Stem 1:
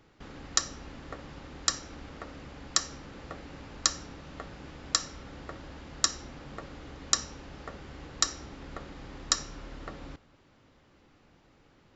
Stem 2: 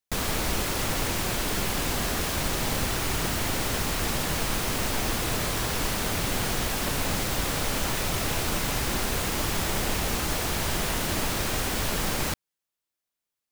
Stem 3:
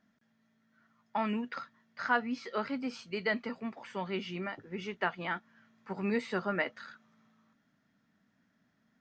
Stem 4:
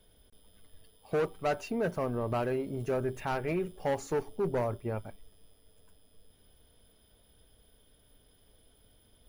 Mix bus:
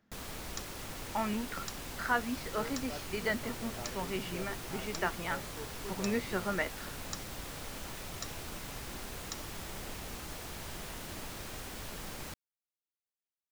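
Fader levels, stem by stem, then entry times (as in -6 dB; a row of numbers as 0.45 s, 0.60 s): -17.5 dB, -15.5 dB, -1.5 dB, -15.5 dB; 0.00 s, 0.00 s, 0.00 s, 1.45 s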